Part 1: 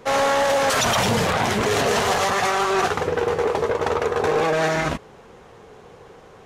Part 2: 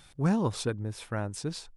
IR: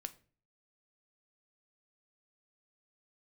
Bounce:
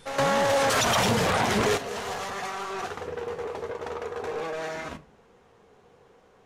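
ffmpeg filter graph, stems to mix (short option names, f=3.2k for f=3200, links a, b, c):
-filter_complex "[0:a]bandreject=f=50:t=h:w=6,bandreject=f=100:t=h:w=6,bandreject=f=150:t=h:w=6,acontrast=80,volume=-6dB,asplit=2[a][b];[b]volume=-10.5dB[c];[1:a]alimiter=limit=-22dB:level=0:latency=1,volume=-1dB,asplit=3[d][e][f];[e]volume=-4.5dB[g];[f]apad=whole_len=284599[h];[a][h]sidechaingate=range=-33dB:threshold=-52dB:ratio=16:detection=peak[i];[2:a]atrim=start_sample=2205[j];[c][g]amix=inputs=2:normalize=0[k];[k][j]afir=irnorm=-1:irlink=0[l];[i][d][l]amix=inputs=3:normalize=0,alimiter=limit=-16dB:level=0:latency=1:release=305"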